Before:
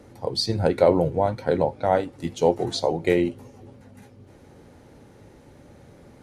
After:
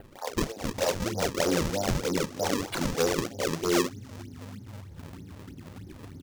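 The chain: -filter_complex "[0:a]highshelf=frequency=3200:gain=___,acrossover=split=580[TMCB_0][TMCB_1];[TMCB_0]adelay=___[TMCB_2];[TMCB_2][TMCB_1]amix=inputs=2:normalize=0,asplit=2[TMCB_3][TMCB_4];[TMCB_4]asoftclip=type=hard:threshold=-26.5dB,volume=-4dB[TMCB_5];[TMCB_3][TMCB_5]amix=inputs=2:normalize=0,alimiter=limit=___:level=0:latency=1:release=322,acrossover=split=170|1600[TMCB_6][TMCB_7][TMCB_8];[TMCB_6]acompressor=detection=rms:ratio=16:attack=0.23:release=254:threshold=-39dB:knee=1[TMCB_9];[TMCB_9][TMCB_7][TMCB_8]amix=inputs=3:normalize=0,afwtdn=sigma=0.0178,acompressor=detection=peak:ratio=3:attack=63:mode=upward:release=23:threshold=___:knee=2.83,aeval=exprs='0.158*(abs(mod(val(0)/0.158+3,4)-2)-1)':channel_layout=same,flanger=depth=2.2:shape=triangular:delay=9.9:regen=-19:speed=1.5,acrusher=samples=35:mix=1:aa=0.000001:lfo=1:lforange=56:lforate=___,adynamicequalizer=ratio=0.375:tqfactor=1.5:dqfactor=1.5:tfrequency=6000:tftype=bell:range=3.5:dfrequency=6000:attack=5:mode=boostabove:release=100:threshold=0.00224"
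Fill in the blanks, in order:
-3, 560, -11.5dB, -41dB, 3.2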